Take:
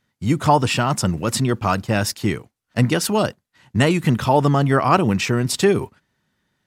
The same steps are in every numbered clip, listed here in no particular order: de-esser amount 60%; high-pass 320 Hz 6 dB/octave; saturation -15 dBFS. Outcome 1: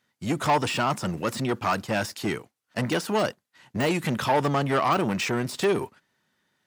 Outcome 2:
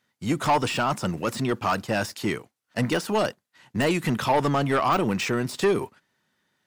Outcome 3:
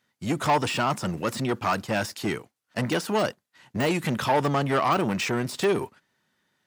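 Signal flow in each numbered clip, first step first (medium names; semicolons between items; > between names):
saturation > high-pass > de-esser; high-pass > saturation > de-esser; saturation > de-esser > high-pass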